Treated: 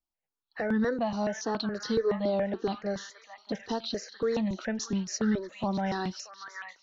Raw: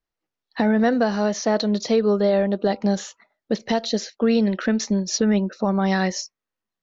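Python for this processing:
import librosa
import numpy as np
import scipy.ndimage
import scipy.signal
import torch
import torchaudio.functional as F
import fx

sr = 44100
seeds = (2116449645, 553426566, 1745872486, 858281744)

y = fx.echo_stepped(x, sr, ms=630, hz=1500.0, octaves=0.7, feedback_pct=70, wet_db=-4)
y = fx.phaser_held(y, sr, hz=7.1, low_hz=470.0, high_hz=2400.0)
y = F.gain(torch.from_numpy(y), -5.5).numpy()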